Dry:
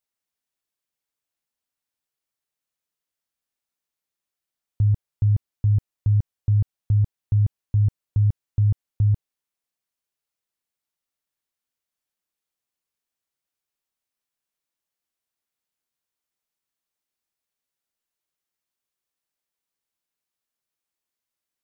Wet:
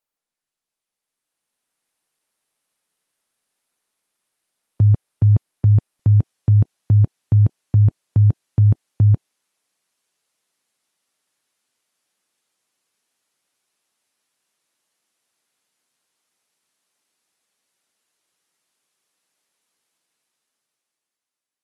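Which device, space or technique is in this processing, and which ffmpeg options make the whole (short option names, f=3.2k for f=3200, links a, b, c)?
video call: -af "highpass=160,dynaudnorm=f=310:g=9:m=14dB" -ar 48000 -c:a libopus -b:a 32k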